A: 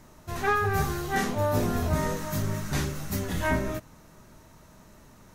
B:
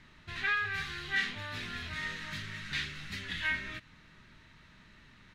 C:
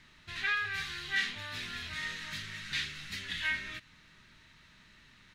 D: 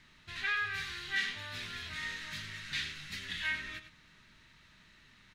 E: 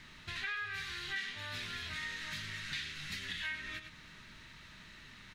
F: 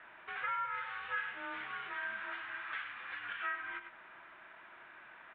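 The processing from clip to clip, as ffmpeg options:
-filter_complex "[0:a]firequalizer=gain_entry='entry(170,0);entry(610,-9);entry(1800,11);entry(3800,10);entry(5900,-7);entry(9900,-13);entry(14000,-25)':delay=0.05:min_phase=1,acrossover=split=1500[s0][s1];[s0]acompressor=threshold=0.0141:ratio=6[s2];[s2][s1]amix=inputs=2:normalize=0,volume=0.501"
-af "highshelf=f=2100:g=9,volume=0.596"
-filter_complex "[0:a]asplit=2[s0][s1];[s1]adelay=99.13,volume=0.316,highshelf=f=4000:g=-2.23[s2];[s0][s2]amix=inputs=2:normalize=0,volume=0.794"
-af "acompressor=threshold=0.00398:ratio=3,volume=2.24"
-filter_complex "[0:a]highpass=f=290:t=q:w=0.5412,highpass=f=290:t=q:w=1.307,lowpass=f=3500:t=q:w=0.5176,lowpass=f=3500:t=q:w=0.7071,lowpass=f=3500:t=q:w=1.932,afreqshift=-280,acrossover=split=180 2300:gain=0.1 1 0.0891[s0][s1][s2];[s0][s1][s2]amix=inputs=3:normalize=0,volume=1.58"

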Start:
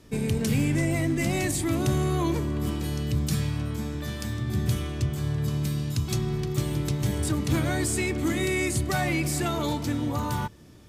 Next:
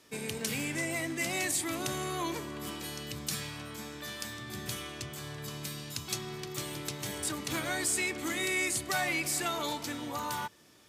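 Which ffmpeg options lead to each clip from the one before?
-af "highpass=f=990:p=1"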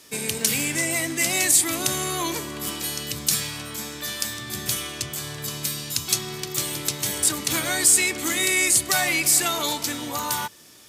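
-af "highshelf=f=3800:g=10.5,volume=2"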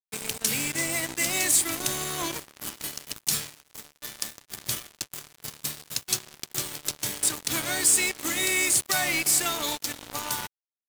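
-af "acrusher=bits=3:mix=0:aa=0.5,volume=0.631"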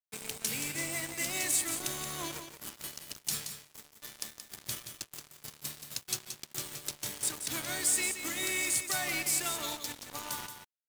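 -af "aecho=1:1:176:0.376,volume=0.398"

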